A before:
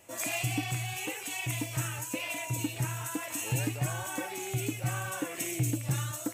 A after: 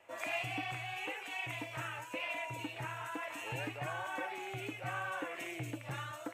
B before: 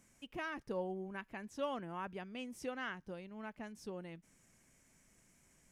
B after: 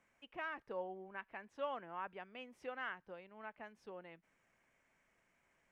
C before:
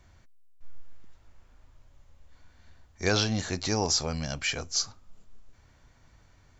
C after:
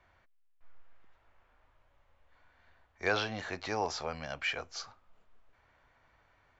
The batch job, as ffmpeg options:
-filter_complex "[0:a]acrossover=split=460 3100:gain=0.2 1 0.0891[s0][s1][s2];[s0][s1][s2]amix=inputs=3:normalize=0"

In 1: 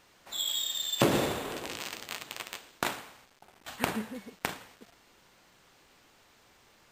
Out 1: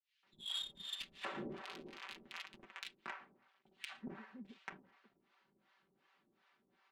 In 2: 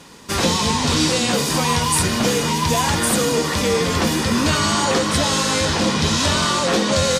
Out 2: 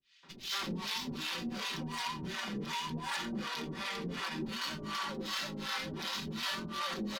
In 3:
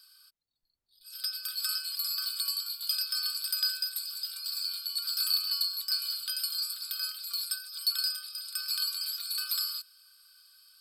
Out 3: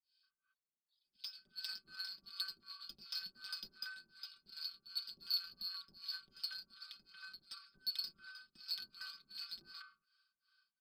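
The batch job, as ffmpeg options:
-filter_complex "[0:a]lowpass=3400,acrossover=split=2500[s0][s1];[s0]adelay=230[s2];[s2][s1]amix=inputs=2:normalize=0,asplit=2[s3][s4];[s4]acompressor=threshold=0.0178:ratio=6,volume=0.944[s5];[s3][s5]amix=inputs=2:normalize=0,aderivative,adynamicsmooth=sensitivity=4.5:basefreq=1700,lowshelf=f=390:t=q:w=1.5:g=9,aecho=1:1:5.2:0.63,alimiter=level_in=1.78:limit=0.0631:level=0:latency=1:release=19,volume=0.562,asoftclip=type=tanh:threshold=0.0299,acrossover=split=560[s6][s7];[s6]aeval=exprs='val(0)*(1-1/2+1/2*cos(2*PI*2.7*n/s))':c=same[s8];[s7]aeval=exprs='val(0)*(1-1/2-1/2*cos(2*PI*2.7*n/s))':c=same[s9];[s8][s9]amix=inputs=2:normalize=0,volume=1.88"

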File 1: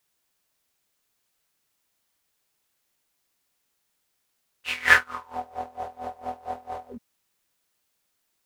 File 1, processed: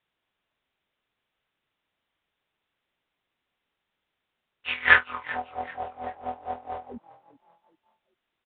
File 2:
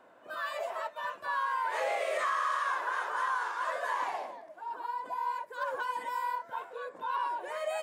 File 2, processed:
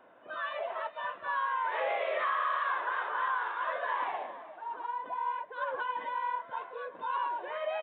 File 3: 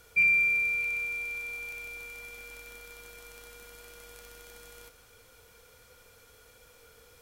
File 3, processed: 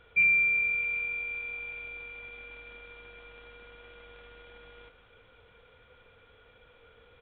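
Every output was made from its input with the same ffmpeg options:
-filter_complex "[0:a]aresample=8000,aresample=44100,asplit=2[s0][s1];[s1]asplit=3[s2][s3][s4];[s2]adelay=387,afreqshift=45,volume=0.119[s5];[s3]adelay=774,afreqshift=90,volume=0.0452[s6];[s4]adelay=1161,afreqshift=135,volume=0.0172[s7];[s5][s6][s7]amix=inputs=3:normalize=0[s8];[s0][s8]amix=inputs=2:normalize=0"

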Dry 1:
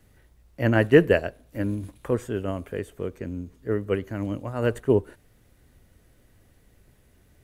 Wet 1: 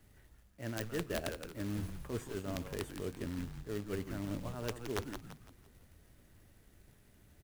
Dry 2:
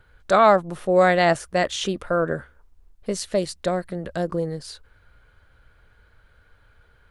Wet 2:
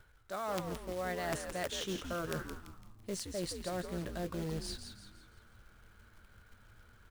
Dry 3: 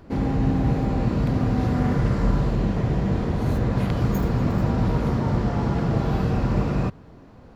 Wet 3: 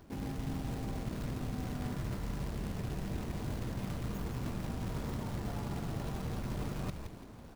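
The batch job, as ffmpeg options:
-filter_complex "[0:a]bandreject=f=500:w=12,areverse,acompressor=threshold=0.0316:ratio=12,areverse,aeval=exprs='(mod(12.6*val(0)+1,2)-1)/12.6':c=same,acrusher=bits=3:mode=log:mix=0:aa=0.000001,asplit=6[s0][s1][s2][s3][s4][s5];[s1]adelay=169,afreqshift=-120,volume=0.447[s6];[s2]adelay=338,afreqshift=-240,volume=0.184[s7];[s3]adelay=507,afreqshift=-360,volume=0.075[s8];[s4]adelay=676,afreqshift=-480,volume=0.0309[s9];[s5]adelay=845,afreqshift=-600,volume=0.0126[s10];[s0][s6][s7][s8][s9][s10]amix=inputs=6:normalize=0,volume=0.562"

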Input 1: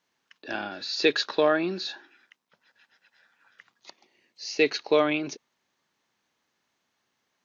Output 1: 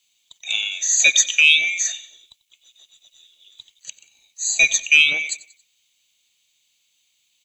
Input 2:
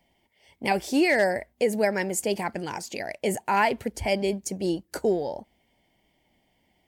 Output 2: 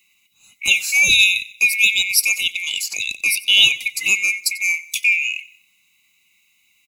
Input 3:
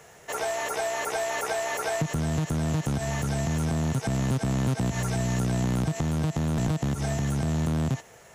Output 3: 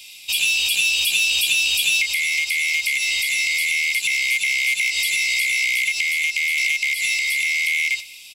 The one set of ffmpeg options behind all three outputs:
-filter_complex "[0:a]afftfilt=real='real(if(lt(b,920),b+92*(1-2*mod(floor(b/92),2)),b),0)':imag='imag(if(lt(b,920),b+92*(1-2*mod(floor(b/92),2)),b),0)':win_size=2048:overlap=0.75,aexciter=amount=9.6:drive=3.6:freq=2200,asplit=2[s0][s1];[s1]aecho=0:1:92|184|276:0.112|0.0494|0.0217[s2];[s0][s2]amix=inputs=2:normalize=0,volume=0.422"

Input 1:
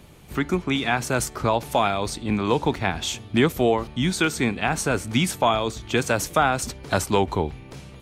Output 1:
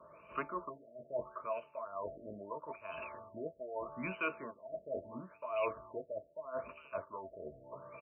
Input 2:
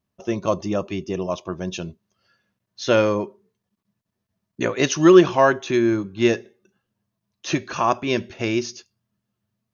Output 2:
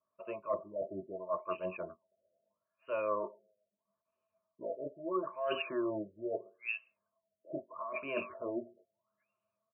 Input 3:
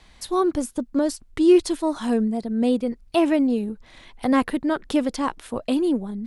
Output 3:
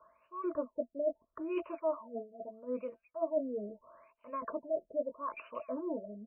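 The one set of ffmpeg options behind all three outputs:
-filter_complex "[0:a]asplit=3[s0][s1][s2];[s0]bandpass=f=730:t=q:w=8,volume=1[s3];[s1]bandpass=f=1090:t=q:w=8,volume=0.501[s4];[s2]bandpass=f=2440:t=q:w=8,volume=0.355[s5];[s3][s4][s5]amix=inputs=3:normalize=0,acrossover=split=590[s6][s7];[s6]flanger=delay=19:depth=2.9:speed=0.32[s8];[s7]alimiter=limit=0.0668:level=0:latency=1:release=293[s9];[s8][s9]amix=inputs=2:normalize=0,lowshelf=f=97:g=7.5,acrossover=split=2500[s10][s11];[s11]adelay=410[s12];[s10][s12]amix=inputs=2:normalize=0,crystalizer=i=4.5:c=0,equalizer=f=770:t=o:w=0.44:g=14,areverse,acompressor=threshold=0.0158:ratio=20,areverse,asuperstop=centerf=770:order=20:qfactor=3.7,afftfilt=real='re*lt(b*sr/1024,650*pow(3100/650,0.5+0.5*sin(2*PI*0.77*pts/sr)))':imag='im*lt(b*sr/1024,650*pow(3100/650,0.5+0.5*sin(2*PI*0.77*pts/sr)))':win_size=1024:overlap=0.75,volume=2.37"

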